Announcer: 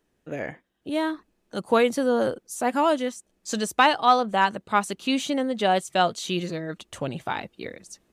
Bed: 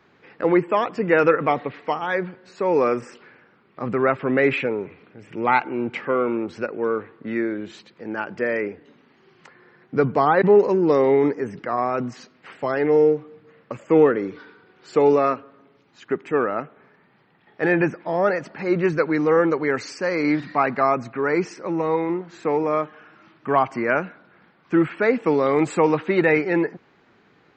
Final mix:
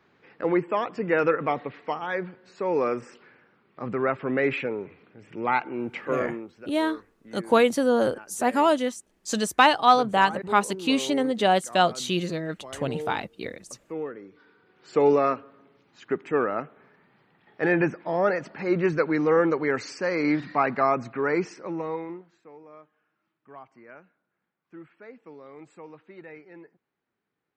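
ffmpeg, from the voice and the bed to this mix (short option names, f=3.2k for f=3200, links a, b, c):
-filter_complex "[0:a]adelay=5800,volume=1dB[a];[1:a]volume=9.5dB,afade=t=out:st=6.12:d=0.44:silence=0.237137,afade=t=in:st=14.33:d=0.72:silence=0.177828,afade=t=out:st=21.27:d=1.15:silence=0.0668344[b];[a][b]amix=inputs=2:normalize=0"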